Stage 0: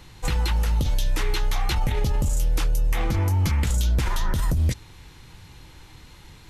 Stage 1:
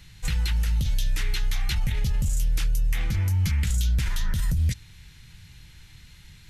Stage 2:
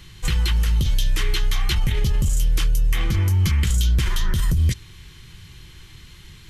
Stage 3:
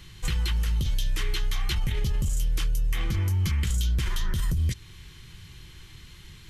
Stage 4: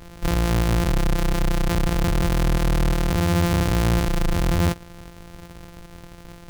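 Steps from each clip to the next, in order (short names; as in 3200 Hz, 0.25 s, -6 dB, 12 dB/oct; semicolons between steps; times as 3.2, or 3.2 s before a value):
band shelf 560 Hz -12.5 dB 2.5 oct; gain -1.5 dB
small resonant body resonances 370/1100/3100 Hz, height 11 dB, ringing for 30 ms; gain +4.5 dB
compressor 1.5:1, threshold -25 dBFS, peak gain reduction 4 dB; gain -3 dB
sample sorter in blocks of 256 samples; gain +4.5 dB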